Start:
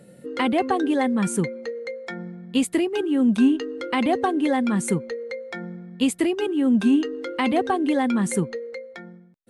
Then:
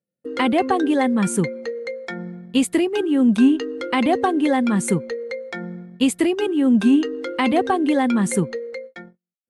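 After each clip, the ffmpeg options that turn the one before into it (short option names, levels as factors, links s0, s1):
-af "agate=range=0.00794:threshold=0.0112:ratio=16:detection=peak,volume=1.41"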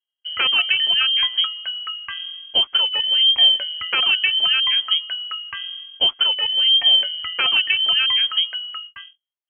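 -af "lowpass=f=2900:t=q:w=0.5098,lowpass=f=2900:t=q:w=0.6013,lowpass=f=2900:t=q:w=0.9,lowpass=f=2900:t=q:w=2.563,afreqshift=-3400"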